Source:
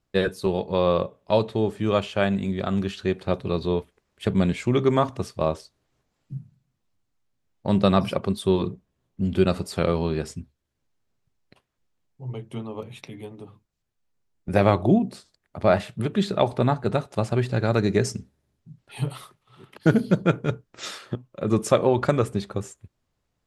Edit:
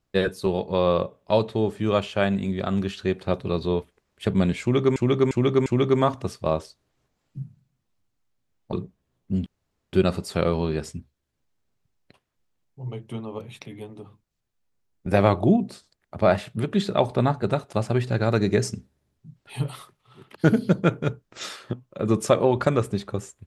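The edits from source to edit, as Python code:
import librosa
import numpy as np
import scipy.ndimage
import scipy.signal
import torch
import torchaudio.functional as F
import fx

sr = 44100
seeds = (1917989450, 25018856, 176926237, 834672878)

y = fx.edit(x, sr, fx.repeat(start_s=4.61, length_s=0.35, count=4),
    fx.cut(start_s=7.68, length_s=0.94),
    fx.insert_room_tone(at_s=9.35, length_s=0.47), tone=tone)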